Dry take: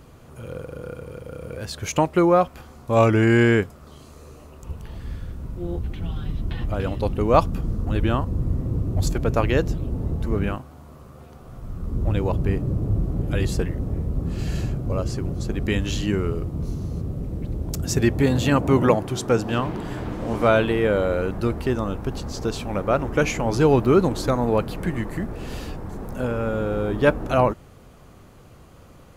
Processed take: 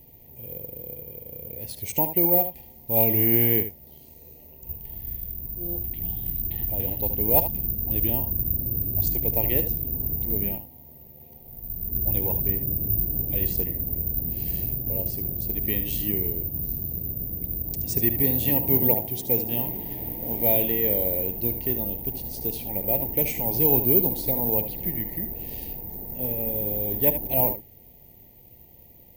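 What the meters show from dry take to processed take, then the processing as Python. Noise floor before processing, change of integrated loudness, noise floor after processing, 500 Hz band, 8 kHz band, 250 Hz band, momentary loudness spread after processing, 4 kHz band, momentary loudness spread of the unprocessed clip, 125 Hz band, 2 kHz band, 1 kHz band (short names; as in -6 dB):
-47 dBFS, 0.0 dB, -50 dBFS, -8.5 dB, -5.0 dB, -8.0 dB, 15 LU, -8.5 dB, 16 LU, -8.0 dB, -13.0 dB, -11.0 dB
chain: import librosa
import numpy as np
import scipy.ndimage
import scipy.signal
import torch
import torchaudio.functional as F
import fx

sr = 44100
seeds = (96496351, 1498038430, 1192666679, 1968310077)

p1 = x + fx.echo_single(x, sr, ms=75, db=-10.5, dry=0)
p2 = (np.kron(scipy.signal.resample_poly(p1, 1, 3), np.eye(3)[0]) * 3)[:len(p1)]
p3 = scipy.signal.sosfilt(scipy.signal.ellip(3, 1.0, 70, [920.0, 1900.0], 'bandstop', fs=sr, output='sos'), p2)
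y = p3 * librosa.db_to_amplitude(-8.0)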